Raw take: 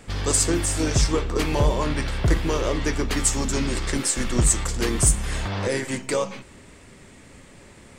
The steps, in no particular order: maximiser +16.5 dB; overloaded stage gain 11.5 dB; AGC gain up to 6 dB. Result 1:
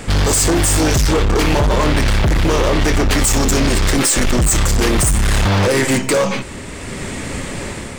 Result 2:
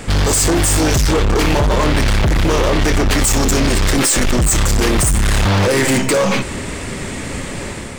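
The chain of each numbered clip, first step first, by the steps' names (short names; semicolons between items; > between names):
maximiser > AGC > overloaded stage; AGC > maximiser > overloaded stage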